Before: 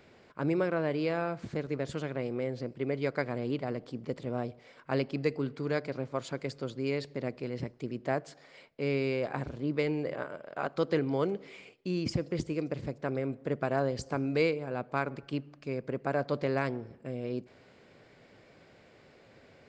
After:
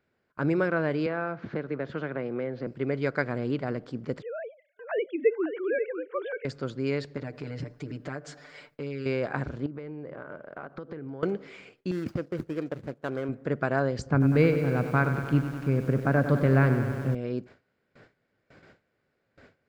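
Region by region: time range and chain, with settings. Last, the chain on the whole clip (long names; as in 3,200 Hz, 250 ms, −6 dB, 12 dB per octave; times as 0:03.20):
0:01.06–0:02.67: high-pass filter 230 Hz 6 dB per octave + high-frequency loss of the air 270 metres + multiband upward and downward compressor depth 70%
0:04.22–0:06.45: three sine waves on the formant tracks + Butterworth high-pass 200 Hz 96 dB per octave + single-tap delay 544 ms −8.5 dB
0:07.17–0:09.06: high-shelf EQ 5,800 Hz +5 dB + comb filter 6.8 ms, depth 90% + downward compressor 4 to 1, threshold −36 dBFS
0:09.66–0:11.23: low-pass filter 1,100 Hz 6 dB per octave + downward compressor 10 to 1, threshold −38 dBFS
0:11.91–0:13.29: running median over 25 samples + noise gate −41 dBFS, range −8 dB + low-shelf EQ 170 Hz −10.5 dB
0:14.06–0:17.15: bass and treble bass +11 dB, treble −11 dB + feedback echo at a low word length 97 ms, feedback 80%, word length 8 bits, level −10 dB
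whole clip: low-shelf EQ 450 Hz +5 dB; noise gate with hold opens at −44 dBFS; parametric band 1,500 Hz +8.5 dB 0.63 octaves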